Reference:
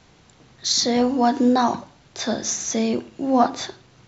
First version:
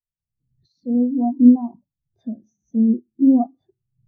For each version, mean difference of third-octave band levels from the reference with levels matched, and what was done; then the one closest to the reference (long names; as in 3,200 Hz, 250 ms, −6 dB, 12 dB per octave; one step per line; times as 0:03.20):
15.5 dB: camcorder AGC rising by 23 dB per second
spectral tilt −3 dB per octave
every bin expanded away from the loudest bin 2.5 to 1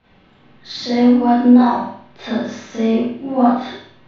6.0 dB: low-pass filter 3,400 Hz 24 dB per octave
on a send: flutter between parallel walls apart 8.4 metres, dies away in 0.52 s
on the sum: four-comb reverb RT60 0.4 s, combs from 29 ms, DRR −9.5 dB
level −8 dB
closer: second